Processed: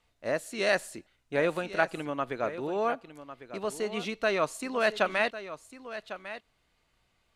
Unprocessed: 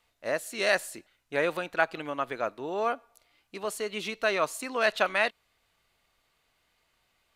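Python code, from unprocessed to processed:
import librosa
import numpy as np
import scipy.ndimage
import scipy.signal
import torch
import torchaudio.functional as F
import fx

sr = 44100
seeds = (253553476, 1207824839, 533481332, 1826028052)

y = scipy.signal.sosfilt(scipy.signal.butter(2, 11000.0, 'lowpass', fs=sr, output='sos'), x)
y = fx.low_shelf(y, sr, hz=380.0, db=8.5)
y = y + 10.0 ** (-13.0 / 20.0) * np.pad(y, (int(1101 * sr / 1000.0), 0))[:len(y)]
y = y * 10.0 ** (-2.5 / 20.0)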